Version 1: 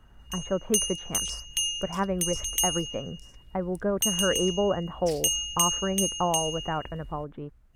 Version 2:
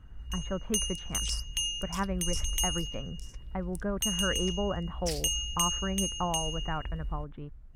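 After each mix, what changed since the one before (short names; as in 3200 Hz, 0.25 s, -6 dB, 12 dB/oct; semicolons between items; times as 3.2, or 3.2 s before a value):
speech: add bell 490 Hz -8.5 dB 2.1 oct; first sound: add tilt -2 dB/oct; second sound +4.0 dB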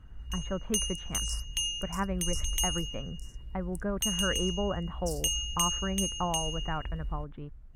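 second sound: add inverse Chebyshev high-pass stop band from 2500 Hz, stop band 50 dB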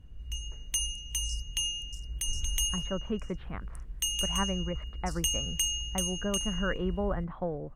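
speech: entry +2.40 s; second sound: add air absorption 57 m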